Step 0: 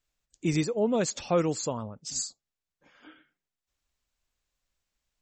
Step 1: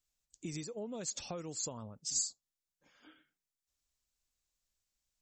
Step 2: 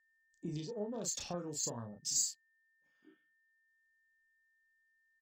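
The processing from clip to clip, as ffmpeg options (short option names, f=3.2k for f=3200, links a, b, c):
-af "highshelf=f=6.5k:g=-6,acompressor=threshold=-31dB:ratio=6,bass=f=250:g=2,treble=f=4k:g=14,volume=-9dB"
-filter_complex "[0:a]afwtdn=0.00251,asplit=2[a][b];[b]adelay=34,volume=-4.5dB[c];[a][c]amix=inputs=2:normalize=0,aeval=exprs='val(0)+0.000224*sin(2*PI*1800*n/s)':c=same"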